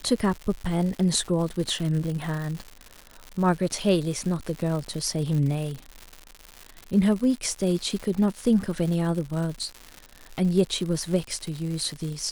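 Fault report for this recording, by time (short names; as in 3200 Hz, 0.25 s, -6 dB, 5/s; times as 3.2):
crackle 180/s -31 dBFS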